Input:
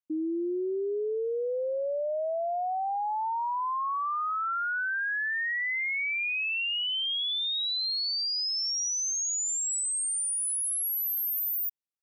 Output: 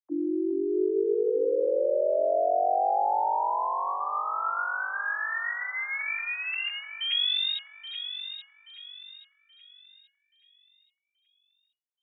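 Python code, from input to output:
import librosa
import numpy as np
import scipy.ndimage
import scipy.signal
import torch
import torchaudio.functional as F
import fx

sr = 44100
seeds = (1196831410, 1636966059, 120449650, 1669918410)

y = fx.sine_speech(x, sr)
y = fx.echo_alternate(y, sr, ms=414, hz=1000.0, feedback_pct=60, wet_db=-5.5)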